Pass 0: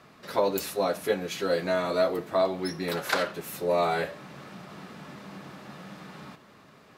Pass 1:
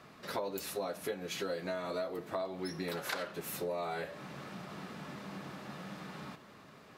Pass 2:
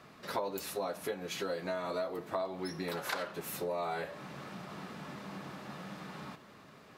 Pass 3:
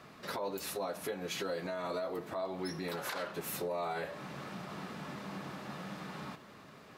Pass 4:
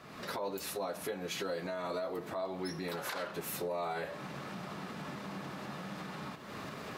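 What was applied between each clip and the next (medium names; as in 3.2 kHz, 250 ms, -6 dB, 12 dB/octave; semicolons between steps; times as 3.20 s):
compression 6:1, threshold -33 dBFS, peak gain reduction 13 dB; trim -1.5 dB
dynamic bell 950 Hz, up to +4 dB, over -51 dBFS, Q 1.7
peak limiter -29.5 dBFS, peak gain reduction 9.5 dB; trim +1.5 dB
recorder AGC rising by 44 dB/s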